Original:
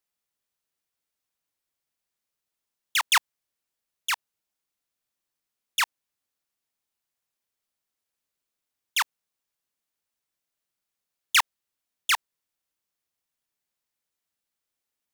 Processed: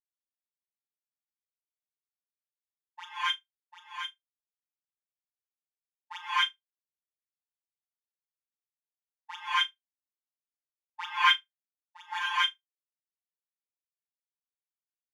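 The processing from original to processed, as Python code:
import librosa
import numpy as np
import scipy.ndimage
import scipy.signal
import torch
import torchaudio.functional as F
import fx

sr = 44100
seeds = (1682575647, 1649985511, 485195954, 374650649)

y = x[::-1].copy()
y = fx.over_compress(y, sr, threshold_db=-29.0, ratio=-1.0)
y = np.clip(10.0 ** (23.0 / 20.0) * y, -1.0, 1.0) / 10.0 ** (23.0 / 20.0)
y = fx.robotise(y, sr, hz=176.0)
y = fx.room_flutter(y, sr, wall_m=6.4, rt60_s=0.34)
y = fx.rev_gated(y, sr, seeds[0], gate_ms=290, shape='rising', drr_db=-7.5)
y = fx.spectral_expand(y, sr, expansion=2.5)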